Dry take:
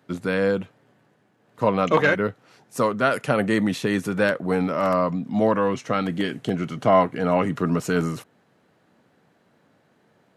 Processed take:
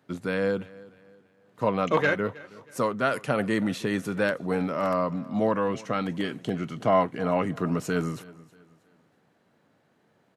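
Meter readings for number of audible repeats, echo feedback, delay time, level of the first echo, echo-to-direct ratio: 2, 38%, 0.319 s, -21.0 dB, -20.5 dB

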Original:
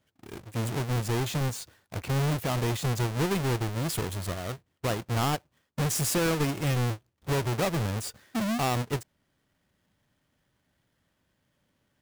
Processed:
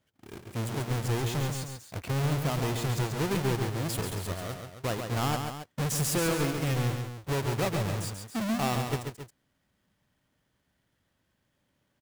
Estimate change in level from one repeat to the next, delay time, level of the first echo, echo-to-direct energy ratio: -5.0 dB, 0.137 s, -6.0 dB, -5.0 dB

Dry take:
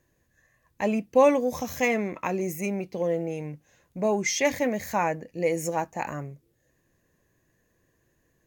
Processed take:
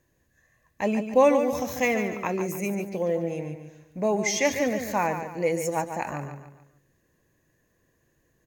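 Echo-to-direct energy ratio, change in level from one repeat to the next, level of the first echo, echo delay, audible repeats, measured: -7.5 dB, -8.0 dB, -8.5 dB, 0.144 s, 4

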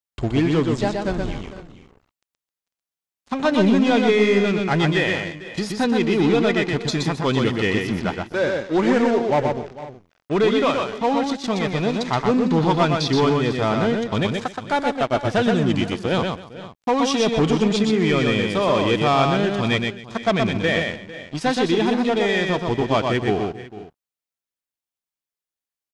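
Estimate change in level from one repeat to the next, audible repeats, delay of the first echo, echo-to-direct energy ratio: no steady repeat, 4, 0.123 s, -3.5 dB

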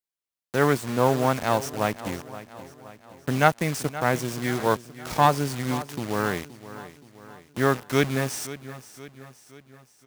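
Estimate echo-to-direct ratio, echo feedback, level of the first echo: -14.0 dB, 51%, -15.5 dB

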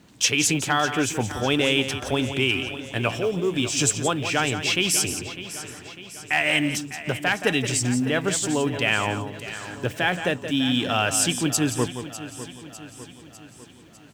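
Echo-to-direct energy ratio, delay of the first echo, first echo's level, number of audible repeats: -8.0 dB, 0.173 s, -10.0 dB, 9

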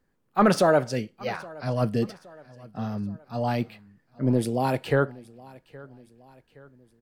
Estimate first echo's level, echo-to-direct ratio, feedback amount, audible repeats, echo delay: -22.0 dB, -21.0 dB, 49%, 3, 0.819 s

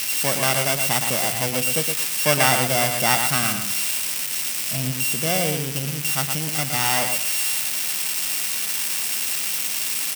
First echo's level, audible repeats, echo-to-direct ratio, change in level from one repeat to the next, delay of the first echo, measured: -6.5 dB, 2, -6.5 dB, -13.5 dB, 0.116 s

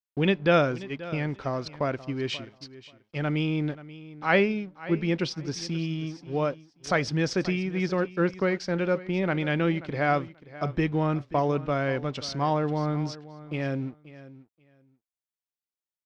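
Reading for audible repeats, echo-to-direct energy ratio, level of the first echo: 2, -17.0 dB, -17.0 dB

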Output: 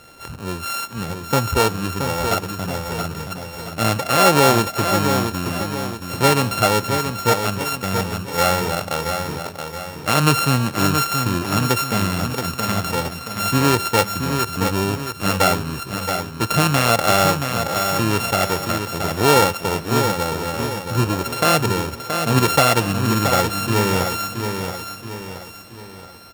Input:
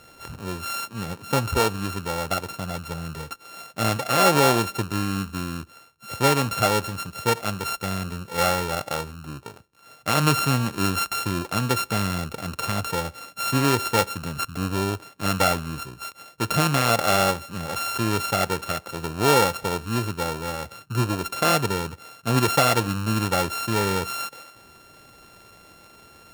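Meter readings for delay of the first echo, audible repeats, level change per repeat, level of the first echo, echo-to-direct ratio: 0.675 s, 5, -7.0 dB, -6.5 dB, -5.5 dB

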